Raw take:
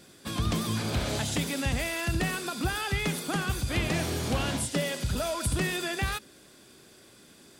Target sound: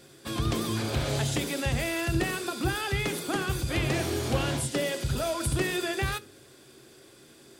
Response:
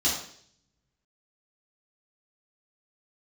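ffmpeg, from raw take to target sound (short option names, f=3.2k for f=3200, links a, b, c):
-filter_complex "[0:a]asplit=2[a][b];[b]lowshelf=f=580:t=q:w=1.5:g=11.5[c];[1:a]atrim=start_sample=2205,asetrate=88200,aresample=44100[d];[c][d]afir=irnorm=-1:irlink=0,volume=-21dB[e];[a][e]amix=inputs=2:normalize=0"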